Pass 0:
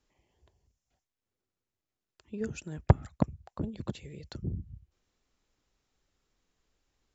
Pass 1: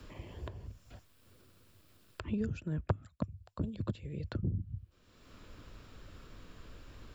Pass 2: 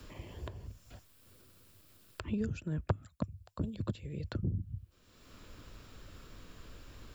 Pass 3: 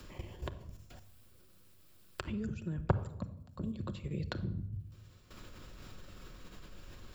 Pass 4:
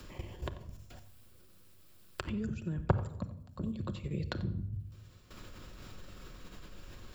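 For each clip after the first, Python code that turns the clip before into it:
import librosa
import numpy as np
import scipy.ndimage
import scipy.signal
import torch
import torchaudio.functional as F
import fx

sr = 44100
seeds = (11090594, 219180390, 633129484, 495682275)

y1 = fx.graphic_eq_31(x, sr, hz=(100, 400, 800, 2000, 6300), db=(7, -4, -11, -6, -9))
y1 = fx.band_squash(y1, sr, depth_pct=100)
y1 = F.gain(torch.from_numpy(y1), -3.0).numpy()
y2 = fx.high_shelf(y1, sr, hz=5800.0, db=7.5)
y3 = fx.level_steps(y2, sr, step_db=14)
y3 = fx.room_shoebox(y3, sr, seeds[0], volume_m3=2400.0, walls='furnished', distance_m=0.98)
y3 = F.gain(torch.from_numpy(y3), 5.0).numpy()
y4 = y3 + 10.0 ** (-16.5 / 20.0) * np.pad(y3, (int(90 * sr / 1000.0), 0))[:len(y3)]
y4 = F.gain(torch.from_numpy(y4), 1.5).numpy()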